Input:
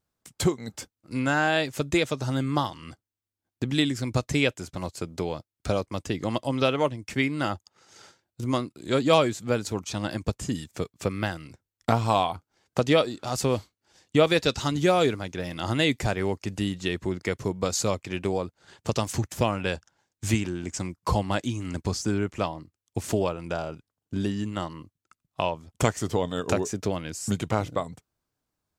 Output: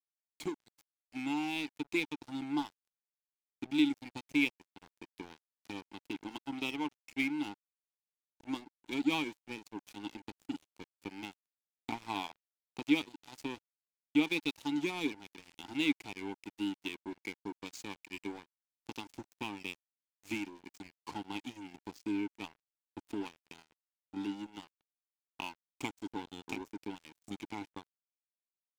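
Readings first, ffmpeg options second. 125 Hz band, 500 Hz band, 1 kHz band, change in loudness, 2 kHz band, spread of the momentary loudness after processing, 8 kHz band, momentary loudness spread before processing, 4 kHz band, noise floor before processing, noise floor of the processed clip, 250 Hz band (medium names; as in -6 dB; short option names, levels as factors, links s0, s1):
-24.5 dB, -20.0 dB, -15.0 dB, -11.0 dB, -9.0 dB, 18 LU, -19.0 dB, 12 LU, -10.5 dB, under -85 dBFS, under -85 dBFS, -7.5 dB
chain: -filter_complex "[0:a]aexciter=amount=4.6:drive=6.3:freq=2400,asplit=3[s0][s1][s2];[s0]bandpass=f=300:t=q:w=8,volume=1[s3];[s1]bandpass=f=870:t=q:w=8,volume=0.501[s4];[s2]bandpass=f=2240:t=q:w=8,volume=0.355[s5];[s3][s4][s5]amix=inputs=3:normalize=0,aeval=exprs='sgn(val(0))*max(abs(val(0))-0.00794,0)':c=same"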